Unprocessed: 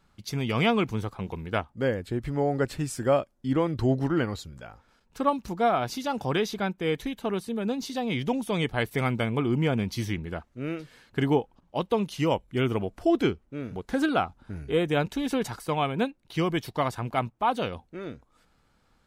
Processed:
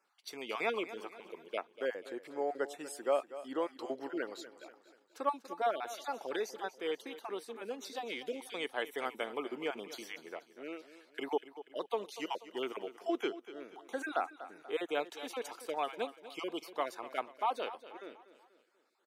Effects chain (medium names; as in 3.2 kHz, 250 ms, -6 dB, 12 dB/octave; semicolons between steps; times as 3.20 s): random holes in the spectrogram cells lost 22%; high-pass 350 Hz 24 dB/octave; on a send: feedback delay 242 ms, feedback 45%, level -14.5 dB; on the sum: trim -7.5 dB